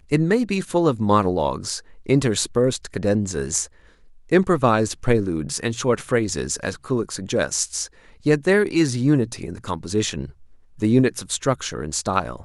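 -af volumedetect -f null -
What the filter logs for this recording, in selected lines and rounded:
mean_volume: -21.7 dB
max_volume: -3.0 dB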